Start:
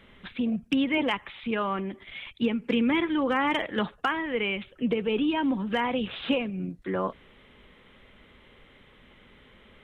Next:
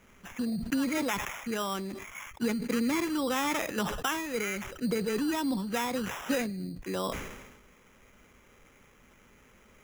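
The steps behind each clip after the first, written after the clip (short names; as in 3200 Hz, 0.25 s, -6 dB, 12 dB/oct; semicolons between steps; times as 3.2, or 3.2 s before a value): sample-and-hold 10×; sustainer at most 49 dB/s; gain -4.5 dB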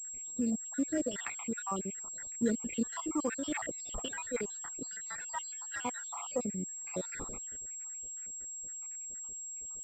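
random spectral dropouts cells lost 80%; pulse-width modulation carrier 7600 Hz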